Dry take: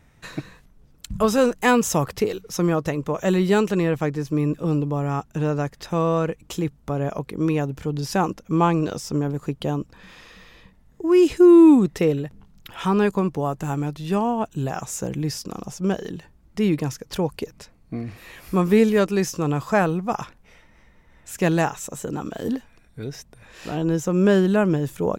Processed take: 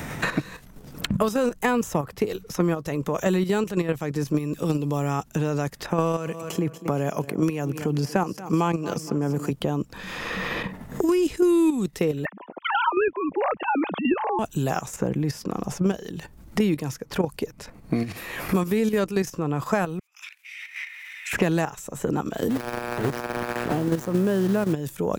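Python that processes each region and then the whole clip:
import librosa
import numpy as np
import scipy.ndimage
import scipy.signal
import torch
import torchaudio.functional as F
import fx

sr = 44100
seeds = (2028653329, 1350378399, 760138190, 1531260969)

y = fx.chain(x, sr, fx.highpass(hz=110.0, slope=24),
    fx.notch(hz=3700.0, q=5.4),
    fx.echo_feedback(ms=234, feedback_pct=35, wet_db=-18.0), at=(5.9, 9.5))
y = fx.chain(y, sr, fx.sine_speech(),
    fx.highpass(hz=320.0, slope=12),
    fx.band_squash(depth_pct=70), at=(12.25, 14.39))
y = fx.chain(y, sr, fx.over_compress(threshold_db=-34.0, ratio=-0.5),
    fx.ladder_highpass(hz=2100.0, resonance_pct=65), at=(19.99, 21.33))
y = fx.lowpass(y, sr, hz=1500.0, slope=6, at=(22.49, 24.72), fade=0.02)
y = fx.dmg_buzz(y, sr, base_hz=120.0, harmonics=16, level_db=-36.0, tilt_db=-5, odd_only=False, at=(22.49, 24.72), fade=0.02)
y = fx.sample_gate(y, sr, floor_db=-32.5, at=(22.49, 24.72), fade=0.02)
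y = fx.level_steps(y, sr, step_db=10)
y = fx.high_shelf(y, sr, hz=8300.0, db=7.5)
y = fx.band_squash(y, sr, depth_pct=100)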